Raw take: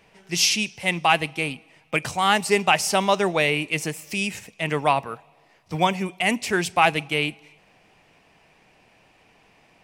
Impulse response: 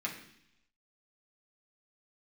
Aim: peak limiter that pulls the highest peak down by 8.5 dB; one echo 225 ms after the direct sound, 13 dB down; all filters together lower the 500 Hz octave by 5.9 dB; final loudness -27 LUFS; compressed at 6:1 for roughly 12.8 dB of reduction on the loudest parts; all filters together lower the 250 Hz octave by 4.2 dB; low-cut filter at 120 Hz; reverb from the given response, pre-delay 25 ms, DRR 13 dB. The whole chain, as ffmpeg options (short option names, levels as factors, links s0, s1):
-filter_complex "[0:a]highpass=120,equalizer=f=250:t=o:g=-3.5,equalizer=f=500:t=o:g=-7,acompressor=threshold=0.0355:ratio=6,alimiter=limit=0.0708:level=0:latency=1,aecho=1:1:225:0.224,asplit=2[s0][s1];[1:a]atrim=start_sample=2205,adelay=25[s2];[s1][s2]afir=irnorm=-1:irlink=0,volume=0.15[s3];[s0][s3]amix=inputs=2:normalize=0,volume=2.51"